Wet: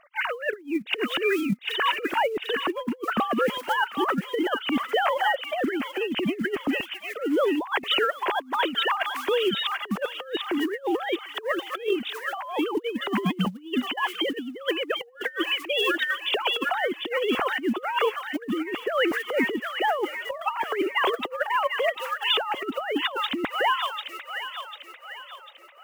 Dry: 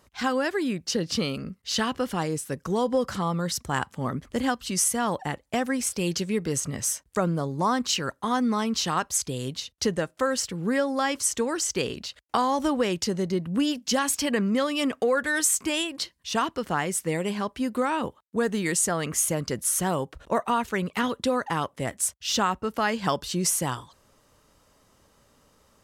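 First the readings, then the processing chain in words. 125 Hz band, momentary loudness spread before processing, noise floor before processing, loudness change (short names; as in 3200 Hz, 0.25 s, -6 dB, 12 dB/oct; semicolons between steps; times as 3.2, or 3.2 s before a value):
-9.0 dB, 6 LU, -64 dBFS, 0.0 dB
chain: sine-wave speech; short-mantissa float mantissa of 4-bit; on a send: thin delay 0.746 s, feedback 45%, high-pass 1800 Hz, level -5 dB; on the sum: negative-ratio compressor -31 dBFS, ratio -0.5; gain +5.5 dB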